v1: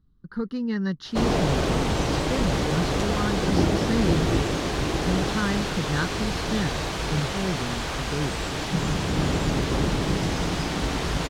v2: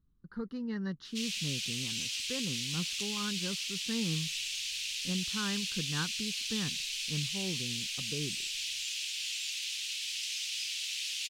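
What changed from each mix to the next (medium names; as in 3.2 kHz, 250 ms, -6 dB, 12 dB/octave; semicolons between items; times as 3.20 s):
speech -9.5 dB; background: add elliptic high-pass 2.6 kHz, stop band 80 dB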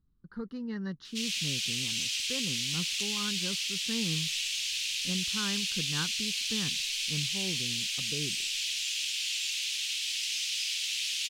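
background: send +11.5 dB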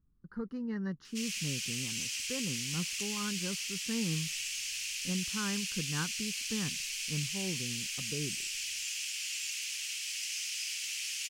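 master: add peaking EQ 3.7 kHz -13 dB 0.6 oct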